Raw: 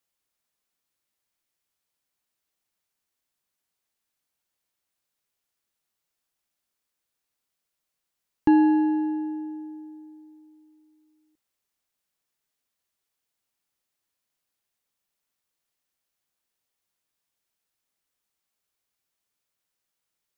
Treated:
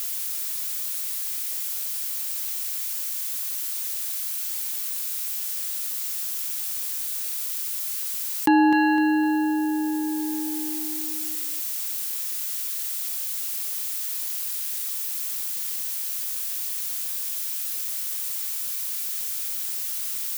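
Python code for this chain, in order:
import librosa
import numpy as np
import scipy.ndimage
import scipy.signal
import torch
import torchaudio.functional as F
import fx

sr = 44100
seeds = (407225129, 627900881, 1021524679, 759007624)

y = fx.tilt_eq(x, sr, slope=4.5)
y = fx.echo_feedback(y, sr, ms=254, feedback_pct=26, wet_db=-11.5)
y = fx.env_flatten(y, sr, amount_pct=70)
y = y * 10.0 ** (5.5 / 20.0)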